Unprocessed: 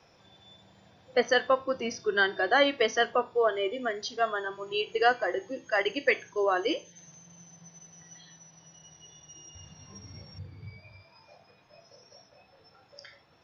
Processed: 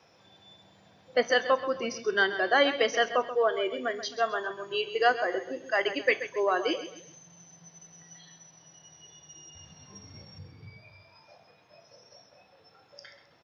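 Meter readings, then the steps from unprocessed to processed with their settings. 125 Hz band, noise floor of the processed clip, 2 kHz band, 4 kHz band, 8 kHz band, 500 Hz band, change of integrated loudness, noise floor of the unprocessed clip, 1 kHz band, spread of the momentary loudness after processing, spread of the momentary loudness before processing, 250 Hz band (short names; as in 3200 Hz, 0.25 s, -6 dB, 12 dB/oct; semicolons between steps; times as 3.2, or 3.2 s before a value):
-3.0 dB, -61 dBFS, +0.5 dB, +0.5 dB, n/a, 0.0 dB, 0.0 dB, -61 dBFS, 0.0 dB, 9 LU, 21 LU, -0.5 dB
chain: HPF 120 Hz 6 dB/oct; on a send: feedback echo 0.132 s, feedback 34%, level -12 dB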